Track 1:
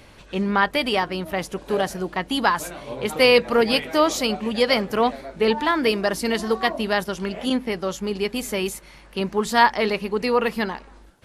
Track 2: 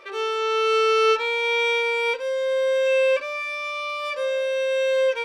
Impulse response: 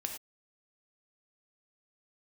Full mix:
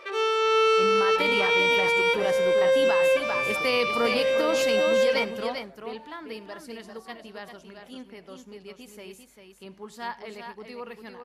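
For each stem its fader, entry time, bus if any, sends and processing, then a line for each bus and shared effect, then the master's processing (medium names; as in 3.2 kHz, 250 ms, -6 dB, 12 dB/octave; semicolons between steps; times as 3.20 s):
5.05 s -9 dB -> 5.82 s -21 dB, 0.45 s, send -10 dB, echo send -5 dB, high-pass 76 Hz 6 dB/octave
+1.0 dB, 0.00 s, no send, echo send -17 dB, none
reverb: on, pre-delay 3 ms
echo: delay 396 ms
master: peak limiter -14 dBFS, peak gain reduction 8 dB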